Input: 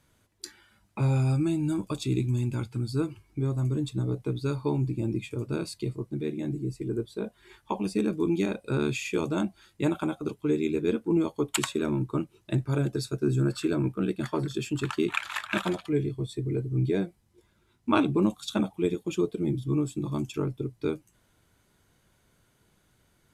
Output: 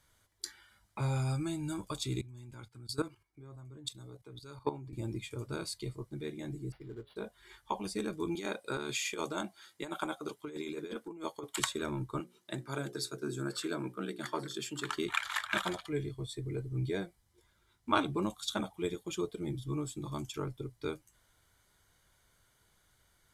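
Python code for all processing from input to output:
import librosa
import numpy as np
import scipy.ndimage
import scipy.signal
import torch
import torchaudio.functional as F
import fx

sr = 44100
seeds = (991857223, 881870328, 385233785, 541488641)

y = fx.chain(x, sr, fx.low_shelf(hz=100.0, db=-8.0),
    fx.level_steps(step_db=13),
    fx.band_widen(depth_pct=70), at=(2.21, 4.93))
y = fx.chain(y, sr, fx.comb_fb(f0_hz=140.0, decay_s=0.3, harmonics='all', damping=0.0, mix_pct=60),
    fx.quant_float(bits=4),
    fx.resample_linear(factor=6), at=(6.72, 7.16))
y = fx.chain(y, sr, fx.highpass(hz=220.0, slope=12),
    fx.over_compress(threshold_db=-29.0, ratio=-0.5), at=(8.35, 11.6))
y = fx.chain(y, sr, fx.highpass(hz=160.0, slope=24),
    fx.hum_notches(base_hz=60, count=9), at=(12.2, 14.97))
y = fx.peak_eq(y, sr, hz=230.0, db=-11.5, octaves=2.5)
y = fx.notch(y, sr, hz=2600.0, q=6.4)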